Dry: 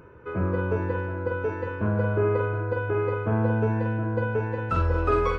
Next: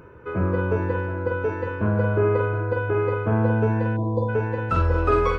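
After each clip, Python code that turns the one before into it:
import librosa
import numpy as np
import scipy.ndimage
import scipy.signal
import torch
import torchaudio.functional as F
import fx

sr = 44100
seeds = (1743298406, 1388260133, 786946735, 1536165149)

y = fx.spec_erase(x, sr, start_s=3.97, length_s=0.32, low_hz=1100.0, high_hz=3300.0)
y = y * librosa.db_to_amplitude(3.0)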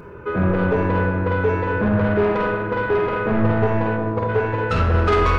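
y = 10.0 ** (-21.5 / 20.0) * np.tanh(x / 10.0 ** (-21.5 / 20.0))
y = fx.room_shoebox(y, sr, seeds[0], volume_m3=1300.0, walls='mixed', distance_m=1.3)
y = y * librosa.db_to_amplitude(6.0)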